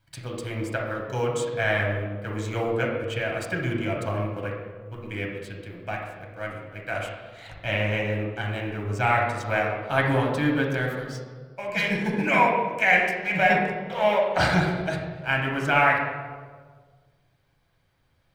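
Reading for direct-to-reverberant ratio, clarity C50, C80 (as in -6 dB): -2.0 dB, 2.5 dB, 5.0 dB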